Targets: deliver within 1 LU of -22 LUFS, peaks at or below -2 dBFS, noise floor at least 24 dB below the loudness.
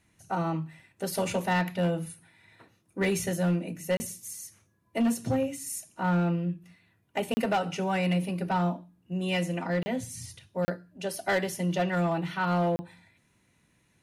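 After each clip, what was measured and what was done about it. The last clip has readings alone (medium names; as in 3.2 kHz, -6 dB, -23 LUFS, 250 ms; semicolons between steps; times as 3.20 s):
clipped samples 0.9%; clipping level -20.5 dBFS; dropouts 5; longest dropout 30 ms; loudness -30.0 LUFS; peak level -20.5 dBFS; loudness target -22.0 LUFS
-> clip repair -20.5 dBFS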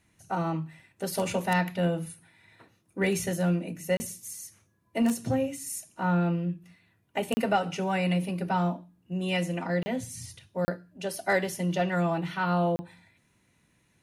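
clipped samples 0.0%; dropouts 5; longest dropout 30 ms
-> interpolate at 3.97/7.34/9.83/10.65/12.76 s, 30 ms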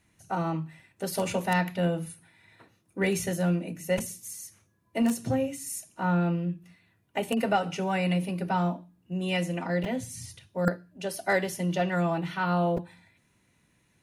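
dropouts 0; loudness -29.5 LUFS; peak level -8.5 dBFS; loudness target -22.0 LUFS
-> trim +7.5 dB; peak limiter -2 dBFS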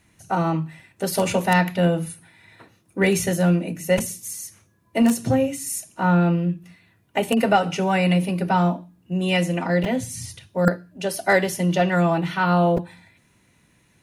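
loudness -22.0 LUFS; peak level -2.0 dBFS; noise floor -61 dBFS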